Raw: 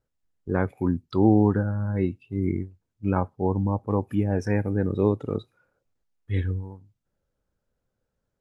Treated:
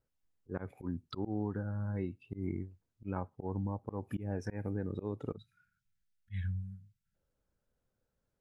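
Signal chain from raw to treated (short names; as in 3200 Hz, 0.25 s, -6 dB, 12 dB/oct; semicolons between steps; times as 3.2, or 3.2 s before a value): auto swell 0.185 s; spectral delete 5.37–7.15, 230–1300 Hz; compressor 4:1, threshold -29 dBFS, peak gain reduction 12.5 dB; gain -4 dB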